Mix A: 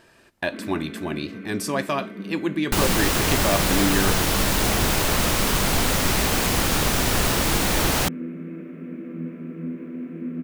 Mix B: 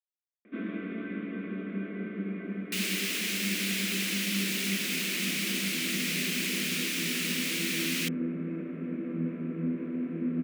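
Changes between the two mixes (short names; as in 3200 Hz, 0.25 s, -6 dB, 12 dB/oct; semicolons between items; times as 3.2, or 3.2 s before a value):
speech: muted; second sound: add ladder high-pass 2000 Hz, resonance 50%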